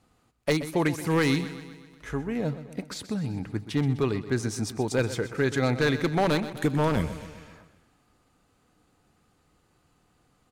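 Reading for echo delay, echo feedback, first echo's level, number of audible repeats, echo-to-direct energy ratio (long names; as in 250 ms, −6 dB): 127 ms, 57%, −13.5 dB, 5, −12.0 dB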